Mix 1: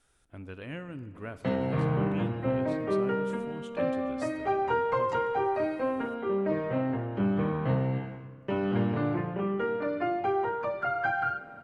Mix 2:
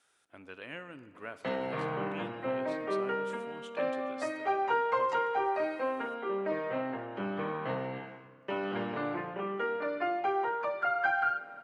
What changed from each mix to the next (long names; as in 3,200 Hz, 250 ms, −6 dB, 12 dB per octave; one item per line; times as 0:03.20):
master: add meter weighting curve A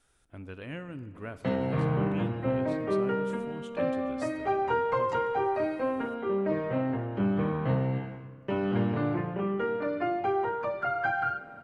master: remove meter weighting curve A